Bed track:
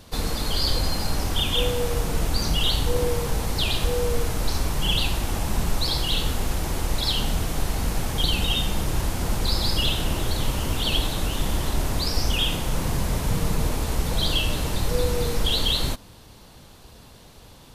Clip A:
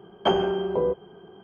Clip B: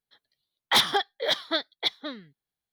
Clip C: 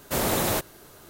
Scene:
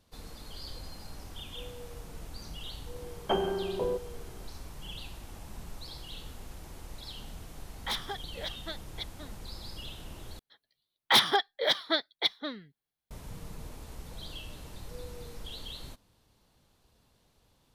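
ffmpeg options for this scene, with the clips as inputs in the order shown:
ffmpeg -i bed.wav -i cue0.wav -i cue1.wav -filter_complex "[2:a]asplit=2[link_01][link_02];[0:a]volume=-20dB[link_03];[link_02]equalizer=frequency=7000:width_type=o:width=0.4:gain=-4.5[link_04];[link_03]asplit=2[link_05][link_06];[link_05]atrim=end=10.394[link_07];[link_04]atrim=end=2.72,asetpts=PTS-STARTPTS,volume=-1dB[link_08];[link_06]atrim=start=13.106[link_09];[1:a]atrim=end=1.43,asetpts=PTS-STARTPTS,volume=-7dB,afade=type=in:duration=0.004:curve=hsin,afade=type=out:start_time=1.426:duration=0.004:curve=hsin,adelay=3040[link_10];[link_01]atrim=end=2.72,asetpts=PTS-STARTPTS,volume=-13.5dB,afade=type=in:duration=0.004:curve=hsin,afade=type=out:start_time=2.716:duration=0.004:curve=hsin,adelay=7150[link_11];[link_07][link_08]acrossfade=duration=0.004:curve1=hsin:curve2=hsin[link_12];[link_12][link_09]acrossfade=duration=0.004:curve1=hsin:curve2=hsin[link_13];[link_13][link_10][link_11]amix=inputs=3:normalize=0" out.wav

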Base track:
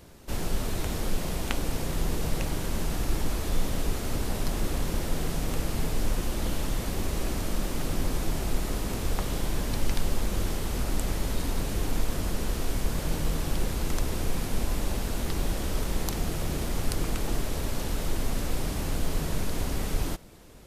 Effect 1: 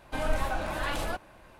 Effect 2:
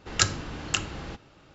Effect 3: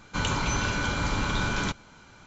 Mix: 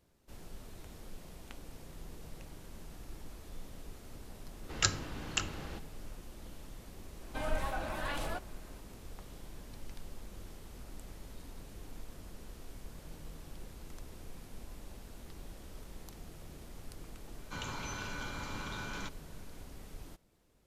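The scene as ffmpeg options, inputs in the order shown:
ffmpeg -i bed.wav -i cue0.wav -i cue1.wav -i cue2.wav -filter_complex "[0:a]volume=-20dB[link_01];[3:a]lowshelf=frequency=140:gain=-5.5[link_02];[2:a]atrim=end=1.54,asetpts=PTS-STARTPTS,volume=-6.5dB,afade=type=in:duration=0.004:curve=hsin,afade=type=out:start_time=1.536:duration=0.004:curve=hsin,adelay=4630[link_03];[1:a]atrim=end=1.59,asetpts=PTS-STARTPTS,volume=-6dB,afade=type=in:duration=0.004:curve=hsin,afade=type=out:start_time=1.586:duration=0.004:curve=hsin,adelay=318402S[link_04];[link_02]atrim=end=2.26,asetpts=PTS-STARTPTS,volume=-13dB,afade=type=in:duration=0.004:curve=hsin,afade=type=out:start_time=2.256:duration=0.004:curve=hsin,adelay=17370[link_05];[link_01][link_03][link_04][link_05]amix=inputs=4:normalize=0" out.wav

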